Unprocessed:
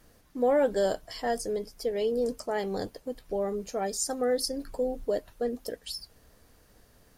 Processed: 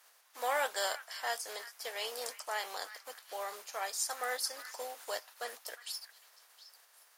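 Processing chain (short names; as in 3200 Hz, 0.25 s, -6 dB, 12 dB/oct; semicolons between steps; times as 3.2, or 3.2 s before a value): spectral contrast lowered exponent 0.66; ladder high-pass 640 Hz, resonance 20%; delay with a stepping band-pass 0.357 s, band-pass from 1700 Hz, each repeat 1.4 oct, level -11 dB; gain +1.5 dB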